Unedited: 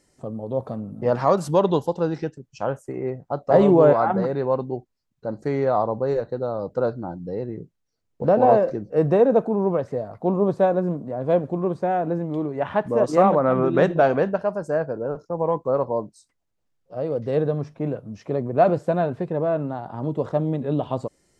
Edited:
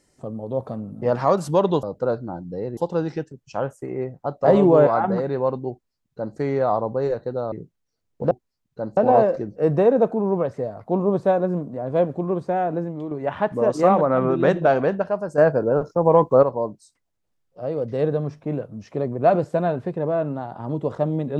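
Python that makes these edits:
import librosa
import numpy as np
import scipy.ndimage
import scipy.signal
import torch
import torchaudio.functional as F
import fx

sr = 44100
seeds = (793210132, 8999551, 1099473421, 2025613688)

y = fx.edit(x, sr, fx.duplicate(start_s=4.77, length_s=0.66, to_s=8.31),
    fx.move(start_s=6.58, length_s=0.94, to_s=1.83),
    fx.fade_out_to(start_s=12.05, length_s=0.4, floor_db=-6.5),
    fx.clip_gain(start_s=14.72, length_s=1.05, db=7.5), tone=tone)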